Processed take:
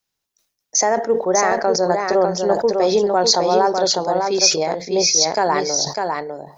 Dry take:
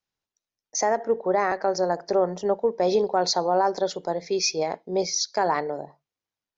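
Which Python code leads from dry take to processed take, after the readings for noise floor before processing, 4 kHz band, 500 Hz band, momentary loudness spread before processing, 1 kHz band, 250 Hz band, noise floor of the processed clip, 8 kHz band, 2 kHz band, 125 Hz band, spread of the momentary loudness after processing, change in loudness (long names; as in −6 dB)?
below −85 dBFS, +11.0 dB, +6.5 dB, 6 LU, +6.5 dB, +6.5 dB, −79 dBFS, can't be measured, +7.5 dB, +7.0 dB, 6 LU, +7.5 dB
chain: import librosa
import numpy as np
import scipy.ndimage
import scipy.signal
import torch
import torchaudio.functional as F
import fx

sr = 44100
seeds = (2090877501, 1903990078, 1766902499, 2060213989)

p1 = fx.high_shelf(x, sr, hz=4800.0, db=9.5)
p2 = p1 + fx.echo_single(p1, sr, ms=601, db=-4.5, dry=0)
p3 = fx.sustainer(p2, sr, db_per_s=110.0)
y = F.gain(torch.from_numpy(p3), 4.5).numpy()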